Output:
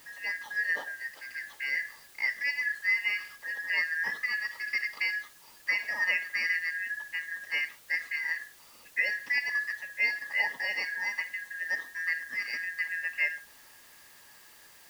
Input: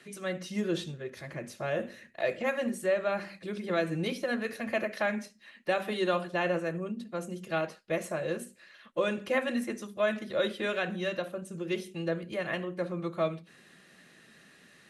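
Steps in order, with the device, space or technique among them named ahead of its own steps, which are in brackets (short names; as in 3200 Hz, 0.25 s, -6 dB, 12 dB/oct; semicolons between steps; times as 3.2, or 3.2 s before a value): split-band scrambled radio (four-band scrambler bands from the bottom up 3142; BPF 360–2900 Hz; white noise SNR 23 dB); gain +1 dB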